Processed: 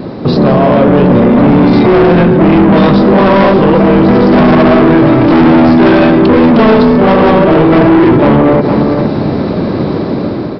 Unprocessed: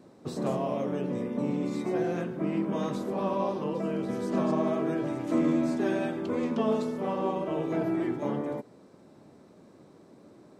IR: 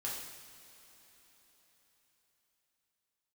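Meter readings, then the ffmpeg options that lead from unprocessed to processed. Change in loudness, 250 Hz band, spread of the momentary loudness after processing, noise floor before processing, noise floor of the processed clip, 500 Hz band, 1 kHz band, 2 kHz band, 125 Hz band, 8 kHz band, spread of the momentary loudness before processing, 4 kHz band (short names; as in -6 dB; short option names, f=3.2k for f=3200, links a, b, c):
+23.0 dB, +24.0 dB, 8 LU, -55 dBFS, -16 dBFS, +23.0 dB, +24.5 dB, +27.0 dB, +26.5 dB, n/a, 5 LU, +26.0 dB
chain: -filter_complex "[0:a]lowshelf=f=140:g=9,dynaudnorm=f=300:g=5:m=9dB,aresample=11025,asoftclip=type=tanh:threshold=-22.5dB,aresample=44100,acontrast=85,asplit=2[a][b];[b]adelay=460.6,volume=-15dB,highshelf=f=4k:g=-10.4[c];[a][c]amix=inputs=2:normalize=0,alimiter=level_in=24.5dB:limit=-1dB:release=50:level=0:latency=1,volume=-1dB"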